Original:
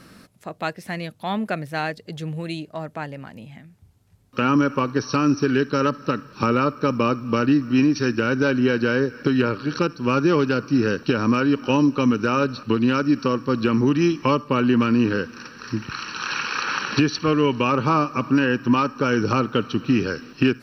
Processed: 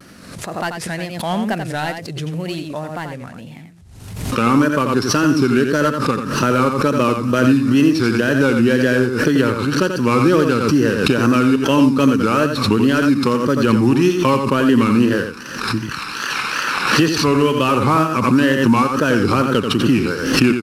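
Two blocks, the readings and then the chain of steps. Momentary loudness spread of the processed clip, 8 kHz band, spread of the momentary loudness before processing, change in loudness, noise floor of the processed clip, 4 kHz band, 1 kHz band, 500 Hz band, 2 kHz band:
11 LU, can't be measured, 12 LU, +5.5 dB, −35 dBFS, +7.0 dB, +5.0 dB, +5.5 dB, +6.0 dB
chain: variable-slope delta modulation 64 kbit/s
tape wow and flutter 140 cents
on a send: single-tap delay 87 ms −7 dB
on the sum: background raised ahead of every attack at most 54 dB per second
level +4 dB

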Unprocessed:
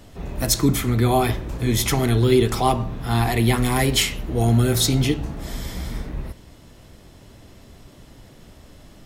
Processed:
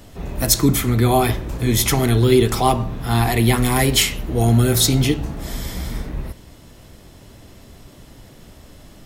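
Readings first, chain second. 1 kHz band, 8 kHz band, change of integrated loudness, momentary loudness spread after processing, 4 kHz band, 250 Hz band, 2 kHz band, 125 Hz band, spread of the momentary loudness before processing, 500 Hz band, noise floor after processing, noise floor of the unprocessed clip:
+2.5 dB, +4.5 dB, +3.0 dB, 14 LU, +3.0 dB, +2.5 dB, +2.5 dB, +2.5 dB, 14 LU, +2.5 dB, −45 dBFS, −47 dBFS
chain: high-shelf EQ 10,000 Hz +5.5 dB
level +2.5 dB

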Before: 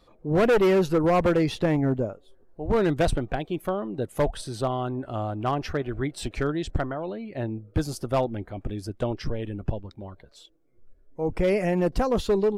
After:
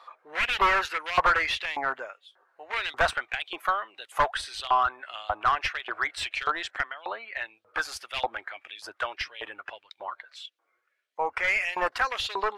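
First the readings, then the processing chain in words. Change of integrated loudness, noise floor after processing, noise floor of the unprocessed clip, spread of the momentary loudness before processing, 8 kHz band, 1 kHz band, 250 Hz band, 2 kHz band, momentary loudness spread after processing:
−1.5 dB, −75 dBFS, −58 dBFS, 12 LU, −1.0 dB, +4.5 dB, −22.0 dB, +9.0 dB, 17 LU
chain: auto-filter high-pass saw up 1.7 Hz 950–3,500 Hz
mid-hump overdrive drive 21 dB, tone 1,300 Hz, clips at −6.5 dBFS
low shelf with overshoot 110 Hz +13 dB, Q 1.5
level −1.5 dB

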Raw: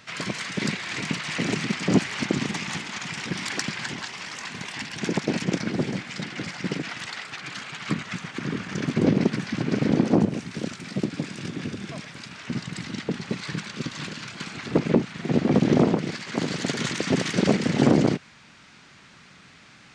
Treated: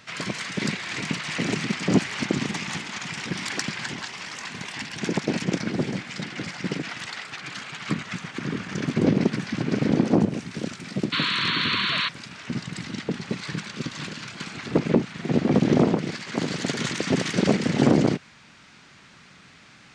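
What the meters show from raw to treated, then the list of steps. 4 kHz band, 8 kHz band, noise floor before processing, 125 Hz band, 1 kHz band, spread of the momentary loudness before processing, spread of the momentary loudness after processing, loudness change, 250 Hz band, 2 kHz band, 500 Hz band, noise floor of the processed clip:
+3.5 dB, 0.0 dB, −51 dBFS, 0.0 dB, +1.0 dB, 13 LU, 12 LU, +0.5 dB, 0.0 dB, +1.5 dB, 0.0 dB, −51 dBFS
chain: sound drawn into the spectrogram noise, 0:11.12–0:12.09, 950–4,500 Hz −25 dBFS

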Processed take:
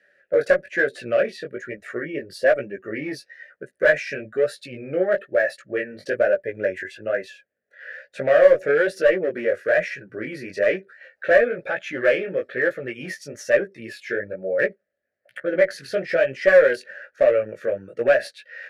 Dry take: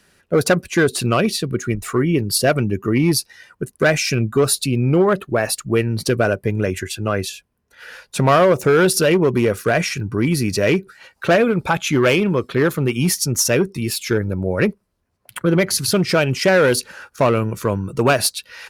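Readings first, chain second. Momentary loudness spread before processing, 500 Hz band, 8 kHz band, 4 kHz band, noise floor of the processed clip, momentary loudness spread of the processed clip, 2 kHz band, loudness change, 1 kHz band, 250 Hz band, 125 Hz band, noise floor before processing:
8 LU, −1.0 dB, below −20 dB, −15.5 dB, −73 dBFS, 15 LU, −1.0 dB, −4.0 dB, −10.5 dB, −14.5 dB, −22.0 dB, −67 dBFS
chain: pair of resonant band-passes 1,000 Hz, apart 1.6 octaves
in parallel at −5.5 dB: asymmetric clip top −18.5 dBFS
on the sum: chorus effect 1.1 Hz, delay 15 ms, depth 6.7 ms
notch filter 1,000 Hz, Q 8.7
level +4.5 dB

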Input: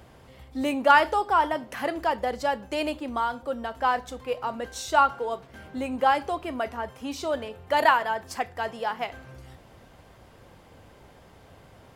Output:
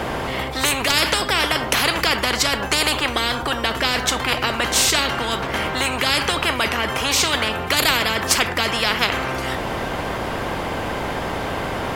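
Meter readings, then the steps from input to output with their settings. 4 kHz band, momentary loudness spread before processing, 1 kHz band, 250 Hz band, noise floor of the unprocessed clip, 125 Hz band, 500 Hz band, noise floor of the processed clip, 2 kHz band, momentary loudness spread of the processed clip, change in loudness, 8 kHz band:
+19.0 dB, 13 LU, +1.5 dB, +6.5 dB, −53 dBFS, +17.5 dB, +4.0 dB, −27 dBFS, +10.0 dB, 8 LU, +6.5 dB, +21.5 dB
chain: bass and treble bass −1 dB, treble −7 dB
every bin compressed towards the loudest bin 10 to 1
level +5.5 dB

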